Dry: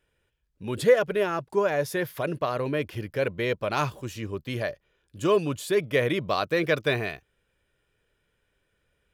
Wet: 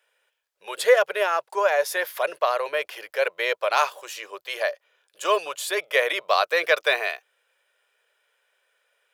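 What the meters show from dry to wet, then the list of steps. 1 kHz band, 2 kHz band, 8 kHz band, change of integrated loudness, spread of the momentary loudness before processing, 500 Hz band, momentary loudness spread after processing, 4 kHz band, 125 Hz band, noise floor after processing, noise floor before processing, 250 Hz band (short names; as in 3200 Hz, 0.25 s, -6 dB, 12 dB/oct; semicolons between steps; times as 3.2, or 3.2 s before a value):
+6.5 dB, +6.5 dB, +6.5 dB, +3.0 dB, 12 LU, +1.5 dB, 12 LU, +6.5 dB, under -35 dB, -75 dBFS, -74 dBFS, -15.5 dB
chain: inverse Chebyshev high-pass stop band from 270 Hz, stop band 40 dB; gain +6.5 dB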